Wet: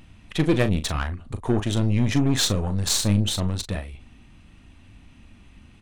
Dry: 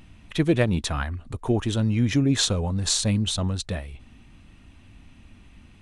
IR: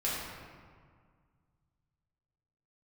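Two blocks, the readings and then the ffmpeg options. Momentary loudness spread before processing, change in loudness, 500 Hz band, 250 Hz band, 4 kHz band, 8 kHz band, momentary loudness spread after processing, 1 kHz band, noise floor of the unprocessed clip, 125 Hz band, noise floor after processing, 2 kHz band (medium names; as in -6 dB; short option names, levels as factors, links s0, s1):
11 LU, +0.5 dB, 0.0 dB, +0.5 dB, +0.5 dB, +0.5 dB, 11 LU, +1.5 dB, -52 dBFS, +1.0 dB, -51 dBFS, +0.5 dB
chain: -filter_complex "[0:a]aeval=exprs='0.422*(cos(1*acos(clip(val(0)/0.422,-1,1)))-cos(1*PI/2))+0.0335*(cos(8*acos(clip(val(0)/0.422,-1,1)))-cos(8*PI/2))':c=same,asplit=2[s0][s1];[s1]adelay=39,volume=0.299[s2];[s0][s2]amix=inputs=2:normalize=0"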